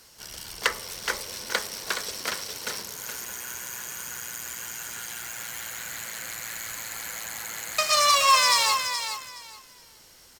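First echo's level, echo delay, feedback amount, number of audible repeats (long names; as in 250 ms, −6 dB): −8.0 dB, 421 ms, 21%, 2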